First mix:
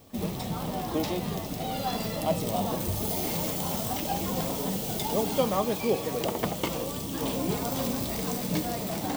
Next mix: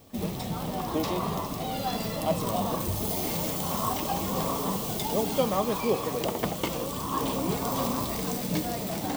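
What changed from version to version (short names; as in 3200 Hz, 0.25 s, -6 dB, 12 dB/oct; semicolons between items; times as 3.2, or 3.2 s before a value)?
second sound: unmuted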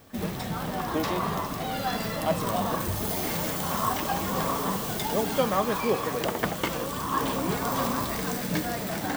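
master: add bell 1600 Hz +11 dB 0.71 oct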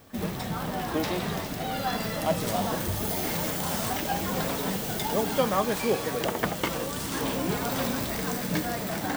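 second sound: remove synth low-pass 1100 Hz, resonance Q 7.8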